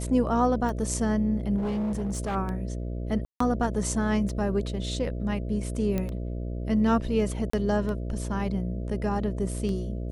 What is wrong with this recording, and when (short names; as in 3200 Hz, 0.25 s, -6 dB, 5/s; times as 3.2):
buzz 60 Hz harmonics 11 -32 dBFS
tick 33 1/3 rpm
1.57–2.36 clipped -25.5 dBFS
3.25–3.4 gap 0.154 s
5.98 pop -16 dBFS
7.5–7.53 gap 34 ms